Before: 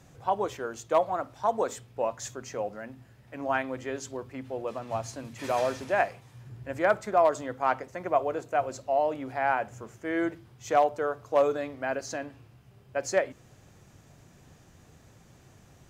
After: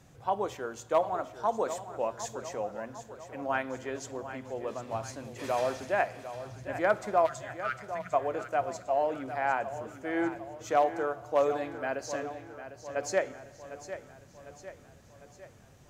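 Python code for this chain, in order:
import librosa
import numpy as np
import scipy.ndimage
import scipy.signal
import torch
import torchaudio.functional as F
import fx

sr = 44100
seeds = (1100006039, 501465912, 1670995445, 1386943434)

p1 = fx.spec_erase(x, sr, start_s=7.26, length_s=0.87, low_hz=200.0, high_hz=1200.0)
p2 = p1 + fx.echo_feedback(p1, sr, ms=752, feedback_pct=53, wet_db=-12, dry=0)
p3 = fx.rev_fdn(p2, sr, rt60_s=1.7, lf_ratio=1.0, hf_ratio=1.0, size_ms=28.0, drr_db=18.0)
y = p3 * 10.0 ** (-2.5 / 20.0)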